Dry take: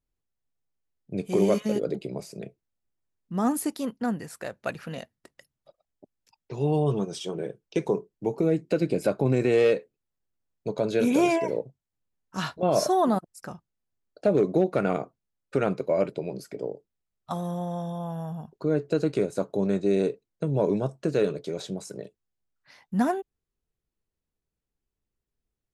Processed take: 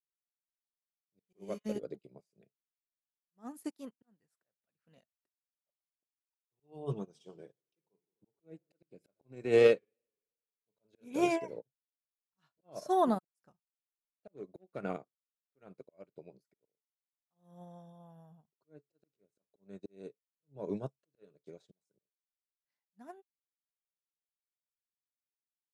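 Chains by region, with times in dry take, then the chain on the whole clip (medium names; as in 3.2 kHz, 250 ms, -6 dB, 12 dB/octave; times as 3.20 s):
6.57–11.02 s: hum notches 50/100/150 Hz + modulated delay 87 ms, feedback 67%, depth 144 cents, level -22 dB
whole clip: slow attack 336 ms; upward expansion 2.5:1, over -45 dBFS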